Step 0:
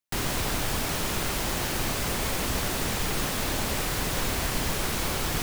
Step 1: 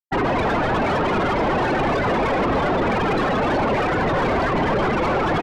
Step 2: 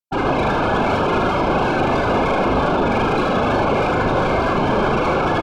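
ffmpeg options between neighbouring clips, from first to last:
-filter_complex "[0:a]afftfilt=real='re*gte(hypot(re,im),0.0562)':imag='im*gte(hypot(re,im),0.0562)':win_size=1024:overlap=0.75,asplit=4[a][b][c][d];[b]adelay=245,afreqshift=91,volume=-13dB[e];[c]adelay=490,afreqshift=182,volume=-22.1dB[f];[d]adelay=735,afreqshift=273,volume=-31.2dB[g];[a][e][f][g]amix=inputs=4:normalize=0,asplit=2[h][i];[i]highpass=f=720:p=1,volume=33dB,asoftclip=type=tanh:threshold=-13.5dB[j];[h][j]amix=inputs=2:normalize=0,lowpass=f=1.2k:p=1,volume=-6dB,volume=2.5dB"
-filter_complex "[0:a]asuperstop=centerf=1900:order=12:qfactor=5.4,asplit=2[a][b];[b]aecho=0:1:38|77:0.562|0.631[c];[a][c]amix=inputs=2:normalize=0"

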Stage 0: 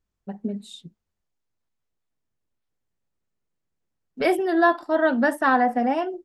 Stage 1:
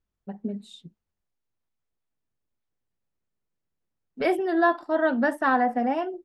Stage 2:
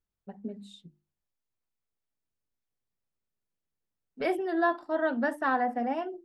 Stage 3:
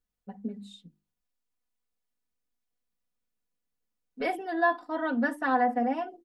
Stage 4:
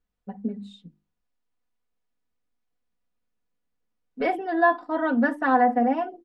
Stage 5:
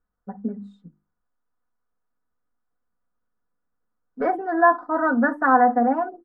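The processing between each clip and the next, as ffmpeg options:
-af "highshelf=f=5.5k:g=-7.5,volume=-2.5dB"
-af "bandreject=f=50:t=h:w=6,bandreject=f=100:t=h:w=6,bandreject=f=150:t=h:w=6,bandreject=f=200:t=h:w=6,bandreject=f=250:t=h:w=6,bandreject=f=300:t=h:w=6,bandreject=f=350:t=h:w=6,volume=-5dB"
-af "aecho=1:1:4.1:0.71,volume=-1dB"
-af "aemphasis=mode=reproduction:type=75kf,volume=6dB"
-af "highshelf=f=2k:t=q:w=3:g=-12.5,volume=1dB"

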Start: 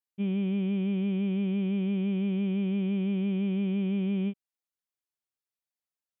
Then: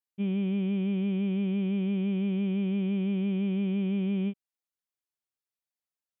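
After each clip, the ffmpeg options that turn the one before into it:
-af anull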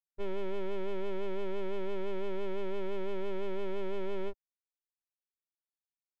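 -af "anlmdn=0.251,aeval=exprs='abs(val(0))':c=same,volume=-2.5dB"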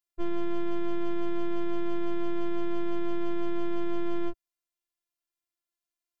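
-af "afftfilt=real='hypot(re,im)*cos(PI*b)':imag='0':win_size=512:overlap=0.75,volume=7dB"

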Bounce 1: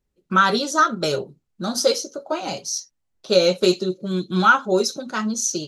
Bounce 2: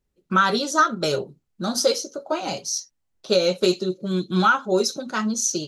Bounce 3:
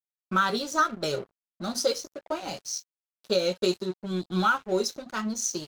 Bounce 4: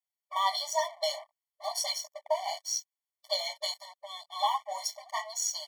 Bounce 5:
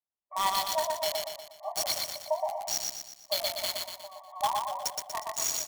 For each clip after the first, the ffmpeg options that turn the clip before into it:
-af "alimiter=limit=-7.5dB:level=0:latency=1:release=400"
-af "aeval=exprs='sgn(val(0))*max(abs(val(0))-0.0126,0)':c=same,volume=-5dB"
-af "afftfilt=real='re*eq(mod(floor(b*sr/1024/590),2),1)':imag='im*eq(mod(floor(b*sr/1024/590),2),1)':win_size=1024:overlap=0.75,volume=3.5dB"
-filter_complex "[0:a]acrossover=split=1300[a][b];[b]acrusher=bits=4:mix=0:aa=0.000001[c];[a][c]amix=inputs=2:normalize=0,aecho=1:1:120|240|360|480|600|720:0.708|0.333|0.156|0.0735|0.0345|0.0162"

